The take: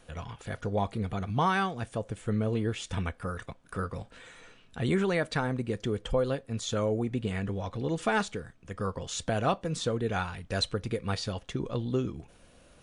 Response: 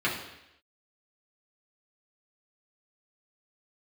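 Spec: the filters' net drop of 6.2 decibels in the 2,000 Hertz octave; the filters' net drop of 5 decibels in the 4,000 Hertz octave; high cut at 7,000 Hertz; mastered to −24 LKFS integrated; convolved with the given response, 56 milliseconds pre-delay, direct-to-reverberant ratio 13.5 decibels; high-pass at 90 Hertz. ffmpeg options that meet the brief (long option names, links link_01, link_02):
-filter_complex "[0:a]highpass=90,lowpass=7000,equalizer=frequency=2000:width_type=o:gain=-8.5,equalizer=frequency=4000:width_type=o:gain=-3,asplit=2[link_01][link_02];[1:a]atrim=start_sample=2205,adelay=56[link_03];[link_02][link_03]afir=irnorm=-1:irlink=0,volume=-25.5dB[link_04];[link_01][link_04]amix=inputs=2:normalize=0,volume=8.5dB"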